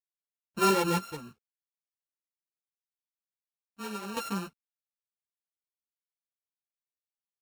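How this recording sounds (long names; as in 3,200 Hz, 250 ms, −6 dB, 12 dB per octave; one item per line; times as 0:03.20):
a buzz of ramps at a fixed pitch in blocks of 32 samples
chopped level 0.72 Hz, depth 65%, duty 70%
a quantiser's noise floor 12 bits, dither none
a shimmering, thickened sound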